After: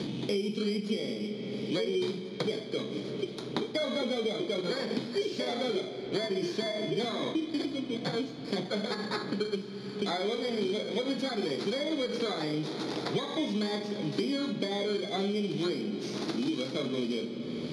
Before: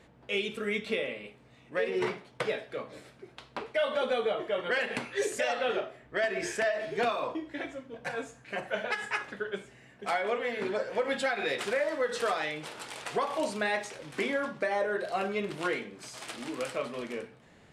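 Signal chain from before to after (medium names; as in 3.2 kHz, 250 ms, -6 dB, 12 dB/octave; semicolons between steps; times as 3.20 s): bit-reversed sample order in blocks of 16 samples; Bessel low-pass 3.4 kHz, order 4; high-order bell 1 kHz -13 dB 2.3 oct; hum notches 60/120/180/240 Hz; in parallel at -2 dB: peak limiter -34.5 dBFS, peak gain reduction 10 dB; on the sum: resonant low shelf 110 Hz -11.5 dB, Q 1.5; on a send at -12.5 dB: reverberation RT60 4.3 s, pre-delay 15 ms; on the sum: three bands compressed up and down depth 100%; trim +2.5 dB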